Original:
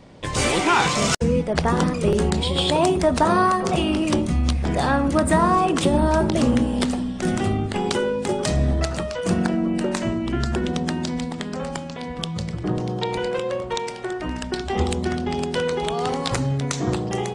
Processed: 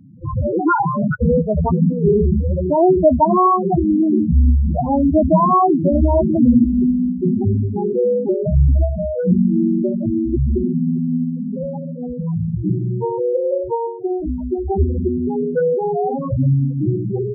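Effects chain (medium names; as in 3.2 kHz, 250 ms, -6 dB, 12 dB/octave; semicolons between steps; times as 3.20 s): distance through air 400 m; loudest bins only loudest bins 4; trim +9 dB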